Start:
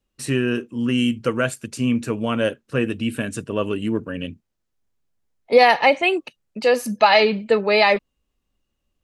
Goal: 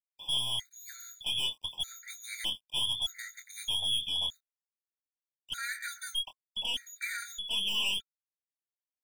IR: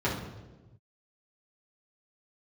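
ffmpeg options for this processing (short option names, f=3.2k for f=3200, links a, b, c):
-filter_complex "[0:a]aemphasis=mode=reproduction:type=cd,afftfilt=real='re*lt(hypot(re,im),1.41)':imag='im*lt(hypot(re,im),1.41)':win_size=1024:overlap=0.75,equalizer=f=300:w=4.7:g=8.5,acrossover=split=180|1400|1600[a][b][c][d];[d]acompressor=threshold=-39dB:ratio=6[e];[a][b][c][e]amix=inputs=4:normalize=0,lowpass=f=3.1k:t=q:w=0.5098,lowpass=f=3.1k:t=q:w=0.6013,lowpass=f=3.1k:t=q:w=0.9,lowpass=f=3.1k:t=q:w=2.563,afreqshift=-3600,aeval=exprs='(tanh(17.8*val(0)+0.35)-tanh(0.35))/17.8':c=same,aeval=exprs='val(0)*gte(abs(val(0)),0.00316)':c=same,asuperstop=centerf=1200:order=20:qfactor=4.9,asplit=2[f][g];[g]adelay=24,volume=-8dB[h];[f][h]amix=inputs=2:normalize=0,afftfilt=real='re*gt(sin(2*PI*0.81*pts/sr)*(1-2*mod(floor(b*sr/1024/1200),2)),0)':imag='im*gt(sin(2*PI*0.81*pts/sr)*(1-2*mod(floor(b*sr/1024/1200),2)),0)':win_size=1024:overlap=0.75,volume=-3.5dB"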